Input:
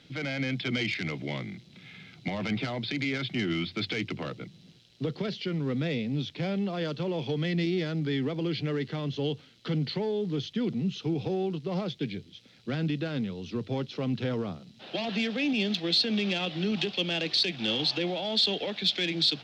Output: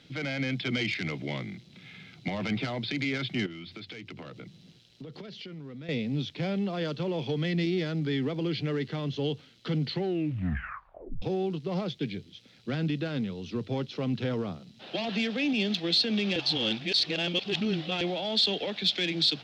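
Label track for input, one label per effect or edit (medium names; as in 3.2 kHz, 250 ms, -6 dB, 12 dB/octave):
3.460000	5.890000	compression 8:1, threshold -39 dBFS
9.910000	9.910000	tape stop 1.31 s
16.360000	18.010000	reverse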